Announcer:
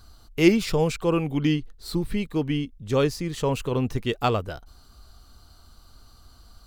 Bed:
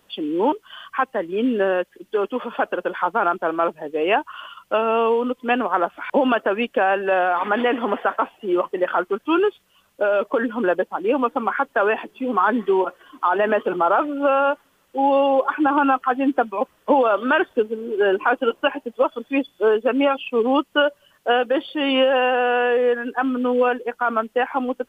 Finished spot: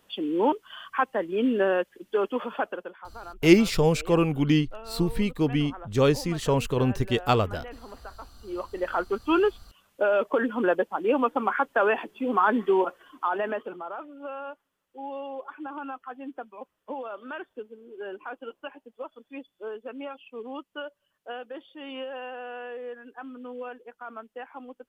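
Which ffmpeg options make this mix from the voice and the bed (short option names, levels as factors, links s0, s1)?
-filter_complex "[0:a]adelay=3050,volume=1.12[s0];[1:a]volume=5.96,afade=t=out:st=2.44:d=0.53:silence=0.112202,afade=t=in:st=8.35:d=0.91:silence=0.112202,afade=t=out:st=12.83:d=1:silence=0.16788[s1];[s0][s1]amix=inputs=2:normalize=0"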